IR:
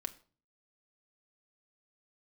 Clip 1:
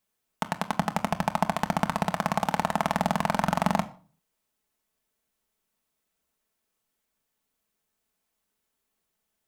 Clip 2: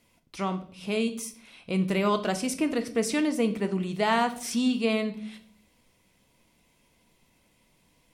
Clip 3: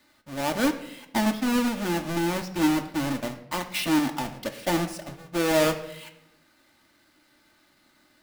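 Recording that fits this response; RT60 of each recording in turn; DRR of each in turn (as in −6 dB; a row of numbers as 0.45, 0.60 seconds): 1; 0.45, 0.60, 0.90 seconds; 6.0, 7.0, 4.5 decibels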